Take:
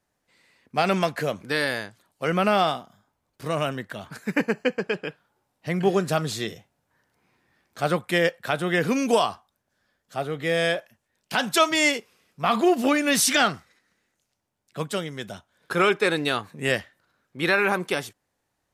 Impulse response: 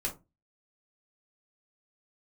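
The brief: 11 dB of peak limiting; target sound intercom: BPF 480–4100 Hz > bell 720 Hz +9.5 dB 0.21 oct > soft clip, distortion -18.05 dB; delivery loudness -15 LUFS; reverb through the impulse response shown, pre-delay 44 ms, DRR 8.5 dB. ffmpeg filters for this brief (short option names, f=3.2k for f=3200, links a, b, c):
-filter_complex "[0:a]alimiter=limit=-18.5dB:level=0:latency=1,asplit=2[a][b];[1:a]atrim=start_sample=2205,adelay=44[c];[b][c]afir=irnorm=-1:irlink=0,volume=-12dB[d];[a][d]amix=inputs=2:normalize=0,highpass=480,lowpass=4.1k,equalizer=f=720:t=o:w=0.21:g=9.5,asoftclip=threshold=-20dB,volume=17dB"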